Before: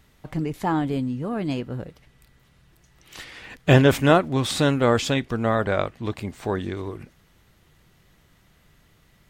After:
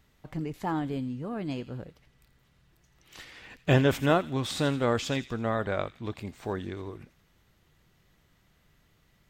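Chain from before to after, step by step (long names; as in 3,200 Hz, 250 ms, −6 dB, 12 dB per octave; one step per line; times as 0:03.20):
parametric band 9,800 Hz −4.5 dB 0.39 octaves
delay with a high-pass on its return 84 ms, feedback 48%, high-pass 2,800 Hz, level −11.5 dB
level −7 dB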